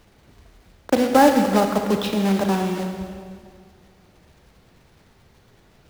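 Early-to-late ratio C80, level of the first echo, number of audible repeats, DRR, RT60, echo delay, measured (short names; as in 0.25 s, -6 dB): 6.5 dB, none, none, 4.0 dB, 2.0 s, none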